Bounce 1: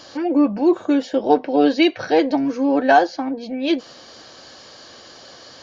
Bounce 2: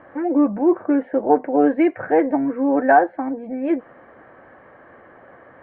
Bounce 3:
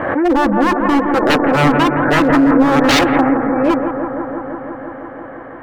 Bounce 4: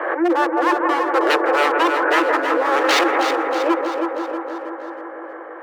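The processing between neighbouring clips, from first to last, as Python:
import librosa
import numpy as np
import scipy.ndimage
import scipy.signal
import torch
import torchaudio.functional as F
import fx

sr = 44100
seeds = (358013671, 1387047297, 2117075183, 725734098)

y1 = scipy.signal.sosfilt(scipy.signal.ellip(4, 1.0, 60, 2000.0, 'lowpass', fs=sr, output='sos'), x)
y2 = 10.0 ** (-17.0 / 20.0) * (np.abs((y1 / 10.0 ** (-17.0 / 20.0) + 3.0) % 4.0 - 2.0) - 1.0)
y2 = fx.echo_bbd(y2, sr, ms=168, stages=2048, feedback_pct=83, wet_db=-7.5)
y2 = fx.pre_swell(y2, sr, db_per_s=41.0)
y2 = y2 * 10.0 ** (9.0 / 20.0)
y3 = scipy.signal.sosfilt(scipy.signal.cheby1(6, 3, 320.0, 'highpass', fs=sr, output='sos'), y2)
y3 = fx.echo_feedback(y3, sr, ms=318, feedback_pct=51, wet_db=-8.0)
y3 = y3 * 10.0 ** (-1.5 / 20.0)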